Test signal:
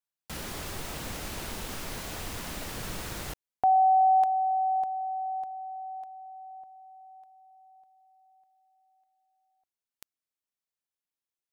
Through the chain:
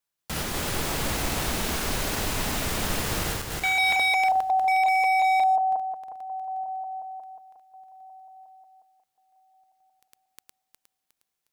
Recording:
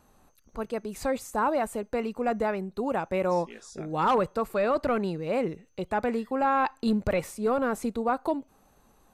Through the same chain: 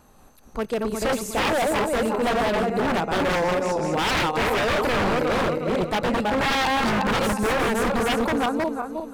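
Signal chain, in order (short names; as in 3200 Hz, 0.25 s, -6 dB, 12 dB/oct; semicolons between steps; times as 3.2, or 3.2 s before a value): regenerating reverse delay 0.18 s, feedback 61%, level -2.5 dB; wavefolder -24 dBFS; gain +7 dB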